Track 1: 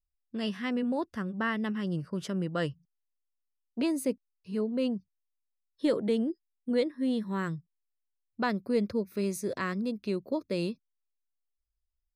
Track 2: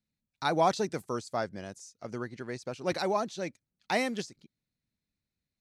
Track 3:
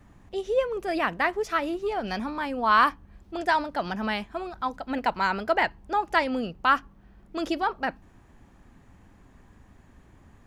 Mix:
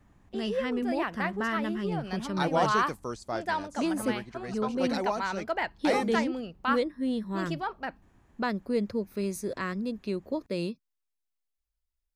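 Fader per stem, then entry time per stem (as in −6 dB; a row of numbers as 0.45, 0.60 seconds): −0.5, −2.0, −7.0 decibels; 0.00, 1.95, 0.00 seconds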